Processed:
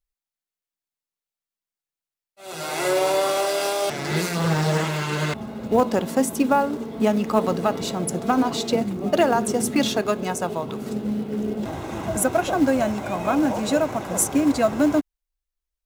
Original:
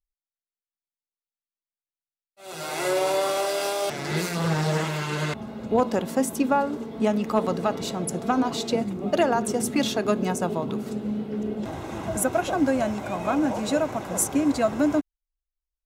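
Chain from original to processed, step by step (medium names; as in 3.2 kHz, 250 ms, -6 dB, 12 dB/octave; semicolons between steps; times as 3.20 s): 10.01–10.82 s: peaking EQ 230 Hz -7 dB 1.6 oct; in parallel at -5 dB: short-mantissa float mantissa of 2-bit; on the sum: trim -1 dB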